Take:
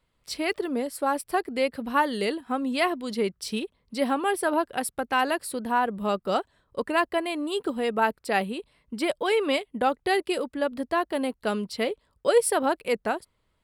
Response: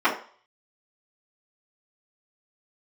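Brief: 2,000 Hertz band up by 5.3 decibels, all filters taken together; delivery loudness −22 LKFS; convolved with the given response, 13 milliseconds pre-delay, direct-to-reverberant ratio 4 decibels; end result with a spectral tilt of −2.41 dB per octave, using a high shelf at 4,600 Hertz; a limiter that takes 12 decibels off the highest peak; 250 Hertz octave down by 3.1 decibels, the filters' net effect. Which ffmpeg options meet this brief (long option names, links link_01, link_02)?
-filter_complex "[0:a]equalizer=frequency=250:width_type=o:gain=-4,equalizer=frequency=2000:width_type=o:gain=6,highshelf=frequency=4600:gain=4.5,alimiter=limit=-18dB:level=0:latency=1,asplit=2[link_01][link_02];[1:a]atrim=start_sample=2205,adelay=13[link_03];[link_02][link_03]afir=irnorm=-1:irlink=0,volume=-22.5dB[link_04];[link_01][link_04]amix=inputs=2:normalize=0,volume=6.5dB"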